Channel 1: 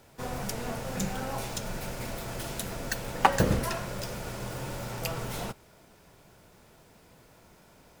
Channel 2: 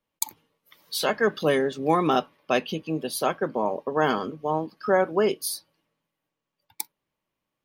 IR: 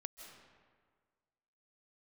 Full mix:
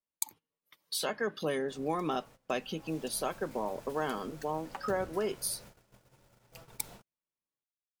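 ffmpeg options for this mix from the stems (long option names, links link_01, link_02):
-filter_complex "[0:a]acompressor=threshold=-42dB:ratio=1.5,acrusher=bits=6:mix=0:aa=0.5,adelay=1500,volume=-13dB,afade=type=in:start_time=2.74:duration=0.29:silence=0.446684[link_01];[1:a]equalizer=frequency=8500:width=1.8:gain=6.5,acompressor=threshold=-40dB:ratio=2,volume=1dB[link_02];[link_01][link_02]amix=inputs=2:normalize=0,agate=range=-19dB:threshold=-50dB:ratio=16:detection=peak"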